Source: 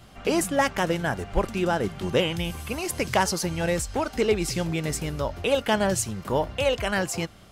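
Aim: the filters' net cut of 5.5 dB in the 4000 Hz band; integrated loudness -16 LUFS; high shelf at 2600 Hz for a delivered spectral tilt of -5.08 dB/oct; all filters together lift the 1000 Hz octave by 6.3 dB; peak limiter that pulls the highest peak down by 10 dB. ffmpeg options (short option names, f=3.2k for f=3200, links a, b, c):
-af "equalizer=f=1k:t=o:g=8.5,highshelf=f=2.6k:g=-3,equalizer=f=4k:t=o:g=-6.5,volume=11.5dB,alimiter=limit=-4dB:level=0:latency=1"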